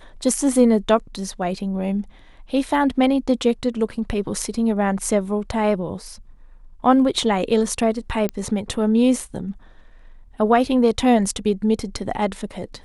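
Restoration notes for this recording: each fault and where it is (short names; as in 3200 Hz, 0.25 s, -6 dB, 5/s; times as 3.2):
8.29 pop -11 dBFS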